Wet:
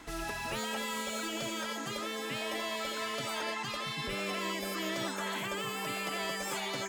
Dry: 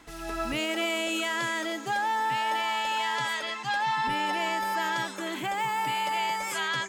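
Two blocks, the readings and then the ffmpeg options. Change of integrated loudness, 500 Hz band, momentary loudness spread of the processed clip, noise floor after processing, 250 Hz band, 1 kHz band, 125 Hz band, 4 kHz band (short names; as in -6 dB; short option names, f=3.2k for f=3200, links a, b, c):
-6.5 dB, -2.5 dB, 2 LU, -39 dBFS, -3.5 dB, -11.5 dB, -1.0 dB, -4.5 dB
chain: -filter_complex "[0:a]afftfilt=real='re*lt(hypot(re,im),0.0891)':imag='im*lt(hypot(re,im),0.0891)':win_size=1024:overlap=0.75,acrossover=split=1500[a][b];[b]asoftclip=type=tanh:threshold=-39dB[c];[a][c]amix=inputs=2:normalize=0,volume=3dB"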